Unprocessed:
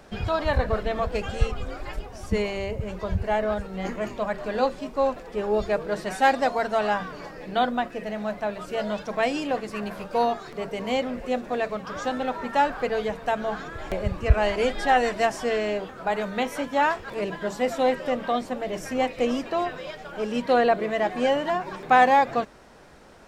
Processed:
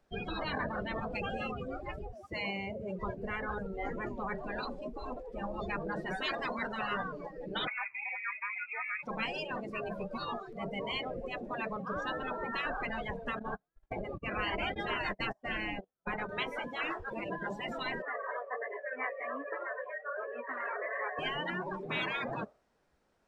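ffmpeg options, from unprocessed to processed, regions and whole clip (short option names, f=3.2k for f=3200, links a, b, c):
-filter_complex "[0:a]asettb=1/sr,asplit=3[a][b][c];[a]atrim=end=2.144[d];[b]atrim=start=2.14:end=2.99,asetpts=PTS-STARTPTS,afade=t=in:d=0.004:c=qsin,afade=t=out:st=0.846:d=0.004:c=qsin,highpass=150,aeval=exprs='sgn(val(0))*max(abs(val(0))-0.00158,0)':c=same[e];[c]atrim=start=2.986[f];[d][e]acrossfade=d=0.004:c1=hsin:c2=qsin[g];[g][f]acrossfade=d=0.004:c1=qsin:c2=hsin,asettb=1/sr,asplit=3[h][i][j];[h]atrim=end=7.674[k];[i]atrim=start=7.67:end=9.03,asetpts=PTS-STARTPTS,afade=t=in:d=0.004:c=qsin,afade=t=out:st=1.356:d=0.004:c=qsin,aeval=exprs='sgn(val(0))*max(abs(val(0))-0.00237,0)':c=same,lowpass=f=2.3k:t=q:w=0.5098,lowpass=f=2.3k:t=q:w=0.6013,lowpass=f=2.3k:t=q:w=0.9,lowpass=f=2.3k:t=q:w=2.563,afreqshift=-2700[l];[j]atrim=start=9.026[m];[k][l]acrossfade=d=0.004:c1=hsin:c2=qsin[n];[n][m]acrossfade=d=0.004:c1=qsin:c2=hsin,asettb=1/sr,asplit=3[o][p][q];[o]atrim=end=13.394[r];[p]atrim=start=13.39:end=16.29,asetpts=PTS-STARTPTS,afade=t=in:d=0.004:c=qsin,afade=t=out:st=2.896:d=0.004:c=qsin,bass=f=250:g=4,treble=f=4k:g=-4,agate=range=-32dB:threshold=-29dB:ratio=16:release=100:detection=peak[s];[q]atrim=start=16.286[t];[r][s]acrossfade=d=0.004:c1=hsin:c2=qsin[u];[u][t]acrossfade=d=0.004:c1=qsin:c2=hsin,asettb=1/sr,asplit=3[v][w][x];[v]atrim=end=18.024[y];[w]atrim=start=18.02:end=21.19,asetpts=PTS-STARTPTS,afade=t=in:d=0.004:c=qsin,afade=t=out:st=3.166:d=0.004:c=qsin,aecho=1:1:7:0.58,atrim=end_sample=139797,flanger=delay=16:depth=6.5:speed=1.3,highpass=f=450:w=0.5412,highpass=f=450:w=1.3066,equalizer=f=560:t=q:w=4:g=9,equalizer=f=810:t=q:w=4:g=-8,equalizer=f=1.1k:t=q:w=4:g=8,equalizer=f=1.8k:t=q:w=4:g=10,lowpass=f=2.2k:w=0.5412,lowpass=f=2.2k:w=1.3066[z];[x]atrim=start=21.186[aa];[y][z]acrossfade=d=0.004:c1=hsin:c2=qsin[ab];[ab][aa]acrossfade=d=0.004:c1=qsin:c2=hsin,afftdn=nr=24:nf=-32,afftfilt=real='re*lt(hypot(re,im),0.158)':imag='im*lt(hypot(re,im),0.158)':win_size=1024:overlap=0.75"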